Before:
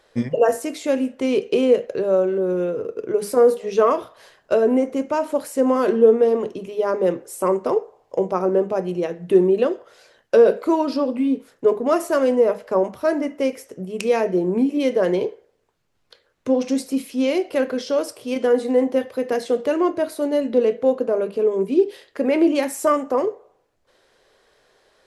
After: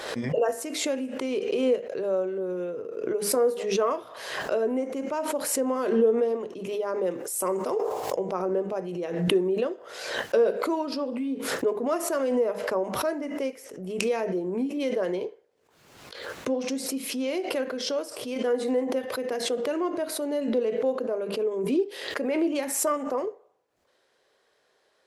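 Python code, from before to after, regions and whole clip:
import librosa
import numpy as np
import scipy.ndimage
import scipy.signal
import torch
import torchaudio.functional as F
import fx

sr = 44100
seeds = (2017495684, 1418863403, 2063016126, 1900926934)

y = fx.chain(x, sr, fx.high_shelf(hz=5600.0, db=11.0),
    fx.sustainer(db_per_s=34.0), at=(7.11, 8.15))
y = fx.highpass(y, sr, hz=210.0, slope=6)
y = fx.pre_swell(y, sr, db_per_s=50.0)
y = y * 10.0 ** (-8.0 / 20.0)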